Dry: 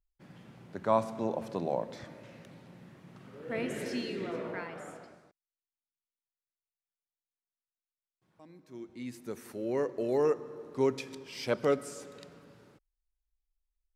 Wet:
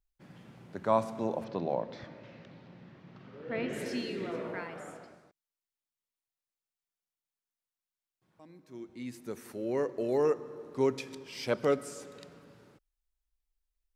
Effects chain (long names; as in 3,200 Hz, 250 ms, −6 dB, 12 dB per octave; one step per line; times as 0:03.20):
0:01.44–0:03.73: low-pass filter 5,100 Hz 24 dB per octave